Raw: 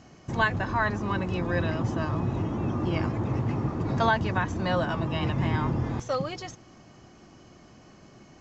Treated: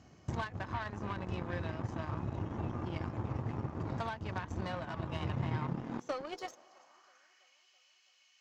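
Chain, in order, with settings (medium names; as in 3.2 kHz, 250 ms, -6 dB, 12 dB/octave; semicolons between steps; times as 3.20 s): dynamic bell 910 Hz, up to +4 dB, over -41 dBFS, Q 1.3; compression 6:1, threshold -36 dBFS, peak gain reduction 18.5 dB; high-pass sweep 69 Hz -> 2.8 kHz, 5.18–7.62 s; on a send: thinning echo 328 ms, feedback 71%, high-pass 400 Hz, level -18 dB; on the sum: Chebyshev shaper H 3 -28 dB, 5 -30 dB, 7 -20 dB, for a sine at -23 dBFS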